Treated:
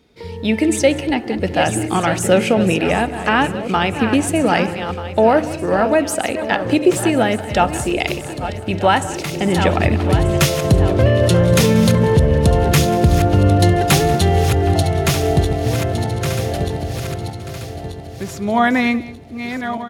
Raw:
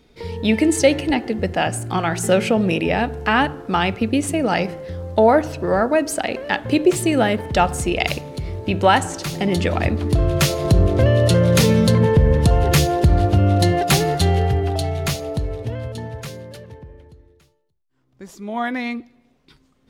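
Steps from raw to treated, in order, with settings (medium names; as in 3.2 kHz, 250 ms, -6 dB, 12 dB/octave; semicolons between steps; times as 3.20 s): backward echo that repeats 618 ms, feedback 62%, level -10.5 dB; high-pass 57 Hz; level rider; delay 187 ms -19 dB; dynamic bell 4.4 kHz, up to -4 dB, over -39 dBFS, Q 5.2; trim -1 dB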